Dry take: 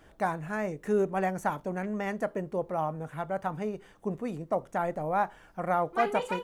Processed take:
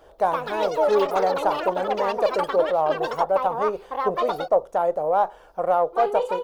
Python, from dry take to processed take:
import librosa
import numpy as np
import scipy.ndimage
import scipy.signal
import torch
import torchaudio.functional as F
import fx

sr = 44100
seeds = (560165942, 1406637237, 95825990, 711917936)

p1 = fx.diode_clip(x, sr, knee_db=-15.5)
p2 = fx.rider(p1, sr, range_db=10, speed_s=0.5)
p3 = p1 + (p2 * librosa.db_to_amplitude(-1.0))
p4 = fx.echo_pitch(p3, sr, ms=187, semitones=7, count=3, db_per_echo=-3.0)
p5 = fx.graphic_eq_10(p4, sr, hz=(125, 250, 500, 1000, 2000, 4000, 8000), db=(-10, -10, 11, 4, -9, 3, -5))
y = p5 * librosa.db_to_amplitude(-2.0)